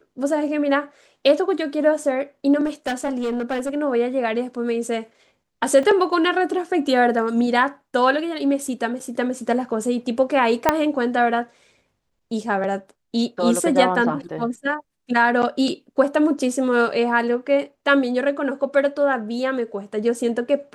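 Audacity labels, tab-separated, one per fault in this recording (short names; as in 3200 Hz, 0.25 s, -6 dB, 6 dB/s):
2.650000	3.760000	clipped -20 dBFS
5.830000	5.830000	gap 3.5 ms
10.690000	10.690000	pop -1 dBFS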